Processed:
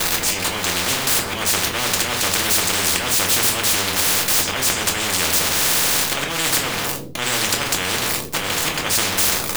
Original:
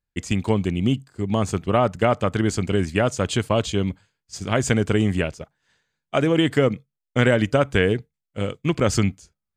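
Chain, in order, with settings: jump at every zero crossing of -27.5 dBFS; peaking EQ 480 Hz +13.5 dB 0.22 oct; slow attack 218 ms; reverberation RT60 0.45 s, pre-delay 3 ms, DRR 0 dB; spectrum-flattening compressor 10:1; trim -1 dB

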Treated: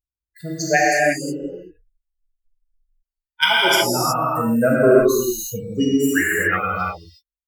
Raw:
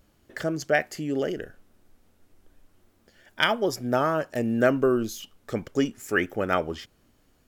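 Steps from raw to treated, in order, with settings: expander on every frequency bin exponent 3; treble shelf 5.3 kHz +11 dB; gated-style reverb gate 390 ms flat, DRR -7 dB; trim +6 dB

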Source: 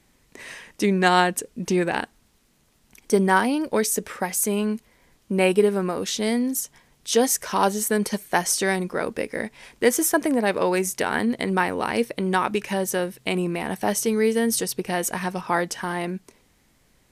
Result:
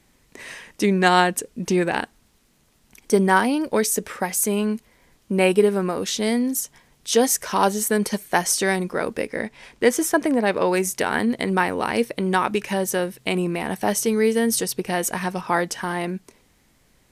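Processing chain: 9.27–10.69 s: treble shelf 9.6 kHz -10 dB; trim +1.5 dB

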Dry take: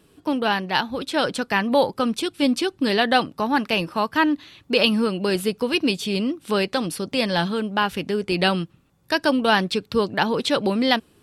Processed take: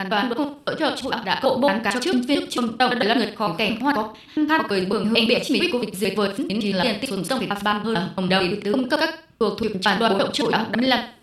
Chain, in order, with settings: slices played last to first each 112 ms, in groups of 6; flutter echo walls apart 8.4 m, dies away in 0.36 s

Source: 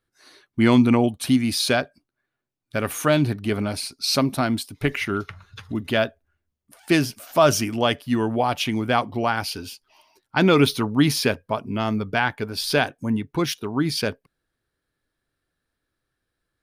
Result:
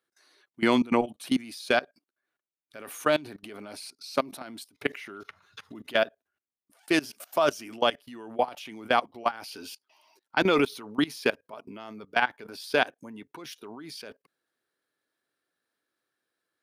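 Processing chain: high-pass 310 Hz 12 dB/octave; level held to a coarse grid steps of 21 dB

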